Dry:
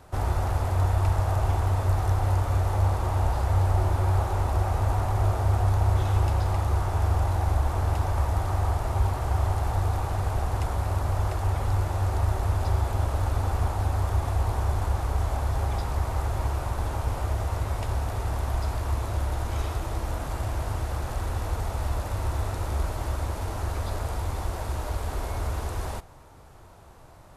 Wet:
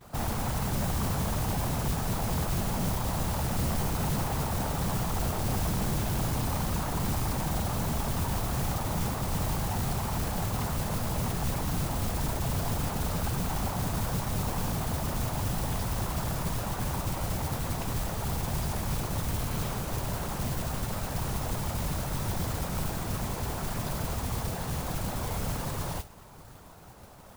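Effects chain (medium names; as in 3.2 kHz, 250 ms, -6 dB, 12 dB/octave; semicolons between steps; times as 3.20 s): vibrato 0.31 Hz 33 cents; whisper effect; saturation -26 dBFS, distortion -8 dB; modulation noise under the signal 10 dB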